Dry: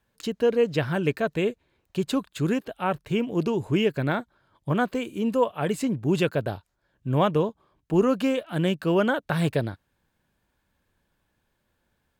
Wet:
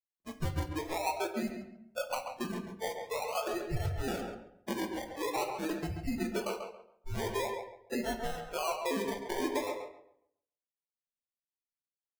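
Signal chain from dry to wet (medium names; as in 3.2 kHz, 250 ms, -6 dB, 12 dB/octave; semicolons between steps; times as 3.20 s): frequency inversion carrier 2.9 kHz; formant-preserving pitch shift -1 st; compression 10:1, threshold -24 dBFS, peak gain reduction 9 dB; decimation with a swept rate 26×, swing 60% 0.46 Hz; spectral noise reduction 18 dB; gate with hold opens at -55 dBFS; on a send: tape echo 137 ms, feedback 28%, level -4 dB, low-pass 2.2 kHz; on the sum: simulated room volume 57 m³, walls mixed, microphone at 0.32 m; trim -6.5 dB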